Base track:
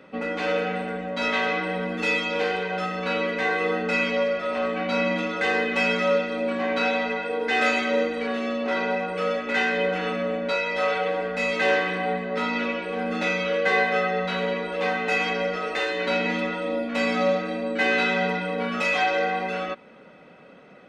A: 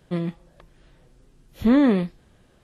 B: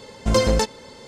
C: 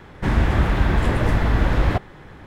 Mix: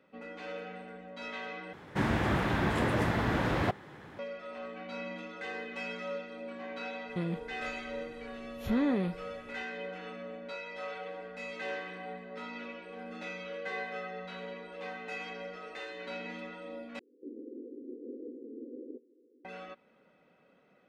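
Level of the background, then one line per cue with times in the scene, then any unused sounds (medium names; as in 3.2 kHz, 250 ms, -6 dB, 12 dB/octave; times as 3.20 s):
base track -16.5 dB
1.73 s: replace with C -5.5 dB + high-pass 140 Hz
7.05 s: add A -2.5 dB, fades 0.10 s + compression 2:1, threshold -30 dBFS
16.99 s: replace with C -14.5 dB + Chebyshev band-pass 240–510 Hz, order 5
not used: B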